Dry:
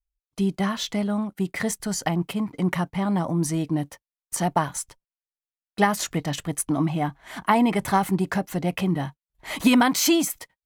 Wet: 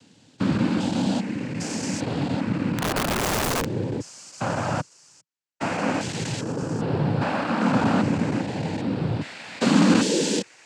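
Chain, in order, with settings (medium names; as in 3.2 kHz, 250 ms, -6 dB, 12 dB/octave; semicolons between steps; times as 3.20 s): spectrogram pixelated in time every 400 ms; noise-vocoded speech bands 8; 2.78–3.70 s: integer overflow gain 24.5 dB; trim +5.5 dB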